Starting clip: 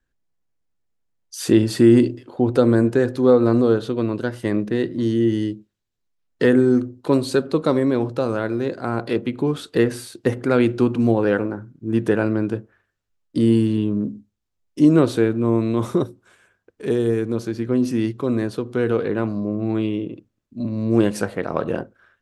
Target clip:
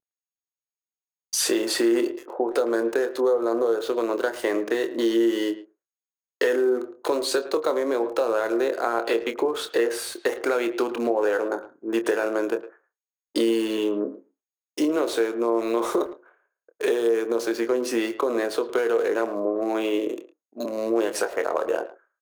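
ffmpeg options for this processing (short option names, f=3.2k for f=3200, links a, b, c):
-filter_complex "[0:a]agate=range=-33dB:threshold=-42dB:ratio=3:detection=peak,highpass=f=420:w=0.5412,highpass=f=420:w=1.3066,dynaudnorm=f=150:g=7:m=11.5dB,asplit=2[a][b];[b]alimiter=limit=-10.5dB:level=0:latency=1:release=24,volume=2dB[c];[a][c]amix=inputs=2:normalize=0,acompressor=threshold=-14dB:ratio=5,aeval=exprs='val(0)+0.01*sin(2*PI*6600*n/s)':c=same,acrossover=split=1700[d][e];[e]acrusher=bits=4:mix=0:aa=0.5[f];[d][f]amix=inputs=2:normalize=0,asplit=2[g][h];[h]adelay=26,volume=-10dB[i];[g][i]amix=inputs=2:normalize=0,asplit=2[j][k];[k]adelay=110,highpass=300,lowpass=3.4k,asoftclip=type=hard:threshold=-12dB,volume=-15dB[l];[j][l]amix=inputs=2:normalize=0,adynamicequalizer=threshold=0.0282:dfrequency=2100:dqfactor=0.7:tfrequency=2100:tqfactor=0.7:attack=5:release=100:ratio=0.375:range=2:mode=cutabove:tftype=highshelf,volume=-6.5dB"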